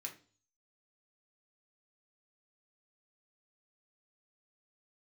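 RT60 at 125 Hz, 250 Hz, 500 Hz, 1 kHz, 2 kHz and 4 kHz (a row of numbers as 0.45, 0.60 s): 0.65, 0.50, 0.45, 0.35, 0.35, 0.45 s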